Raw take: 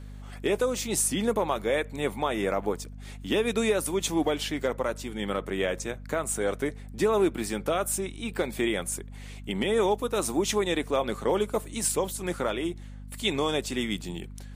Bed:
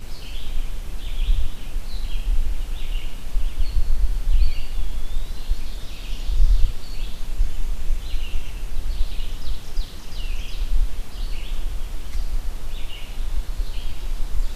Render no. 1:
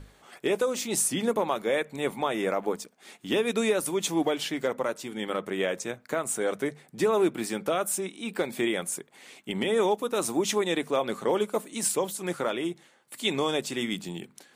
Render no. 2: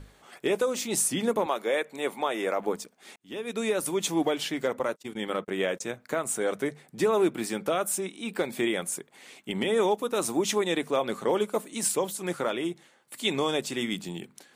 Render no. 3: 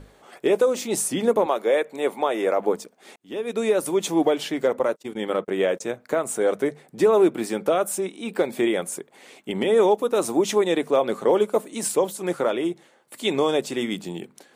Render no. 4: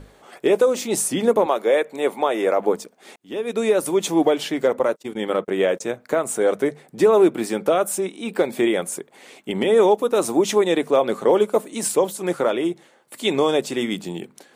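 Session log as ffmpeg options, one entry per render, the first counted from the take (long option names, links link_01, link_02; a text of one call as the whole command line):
ffmpeg -i in.wav -af "bandreject=frequency=50:width_type=h:width=6,bandreject=frequency=100:width_type=h:width=6,bandreject=frequency=150:width_type=h:width=6,bandreject=frequency=200:width_type=h:width=6,bandreject=frequency=250:width_type=h:width=6" out.wav
ffmpeg -i in.wav -filter_complex "[0:a]asettb=1/sr,asplit=3[link_01][link_02][link_03];[link_01]atrim=end=1.464[link_04];[link_02]atrim=start=1.46:end=2.6,asetpts=PTS-STARTPTS,afade=type=in:duration=0.004:curve=qsin,afade=type=out:start_time=1.136:duration=0.004:curve=qsin,highpass=300[link_05];[link_03]atrim=start=2.596[link_06];[link_04][link_05]acrossfade=duration=0.004:curve1=hsin:curve2=qsin[link_07];[link_07][link_06]acrossfade=duration=0.004:curve1=qsin:curve2=hsin,asettb=1/sr,asplit=3[link_08][link_09][link_10];[link_08]atrim=end=4.794[link_11];[link_09]atrim=start=4.79:end=5.84,asetpts=PTS-STARTPTS,afade=type=in:duration=0.004:curve=qsin,afade=type=out:start_time=1.046:duration=0.004:curve=qsin,agate=range=-37dB:threshold=-39dB:ratio=16:release=100:detection=peak[link_12];[link_10]atrim=start=5.836[link_13];[link_11][link_12]acrossfade=duration=0.004:curve1=hsin:curve2=qsin[link_14];[link_14][link_13]acrossfade=duration=0.004:curve1=qsin:curve2=hsin,asplit=2[link_15][link_16];[link_15]atrim=end=3.16,asetpts=PTS-STARTPTS,afade=type=out:start_time=3.156:duration=0.004:curve=hsin[link_17];[link_16]atrim=start=3.16,asetpts=PTS-STARTPTS,afade=type=in:duration=0.71[link_18];[link_17][link_18]concat=n=2:v=0:a=1" out.wav
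ffmpeg -i in.wav -af "equalizer=frequency=500:width_type=o:width=2.1:gain=7.5" out.wav
ffmpeg -i in.wav -af "volume=2.5dB" out.wav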